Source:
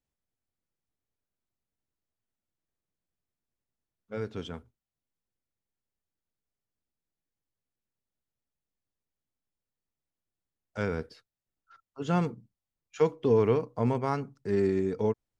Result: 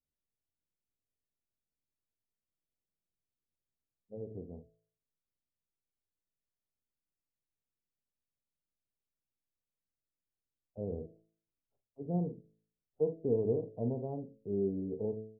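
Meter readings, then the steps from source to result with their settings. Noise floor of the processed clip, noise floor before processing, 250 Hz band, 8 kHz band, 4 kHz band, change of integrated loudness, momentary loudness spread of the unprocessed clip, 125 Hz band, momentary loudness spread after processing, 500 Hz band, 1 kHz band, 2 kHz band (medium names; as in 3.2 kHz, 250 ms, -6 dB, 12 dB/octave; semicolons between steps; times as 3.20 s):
under -85 dBFS, under -85 dBFS, -6.5 dB, no reading, under -30 dB, -7.0 dB, 17 LU, -7.0 dB, 19 LU, -7.0 dB, -17.5 dB, under -40 dB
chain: steep low-pass 690 Hz 48 dB/octave; doubling 46 ms -10.5 dB; de-hum 54.48 Hz, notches 12; trim -6.5 dB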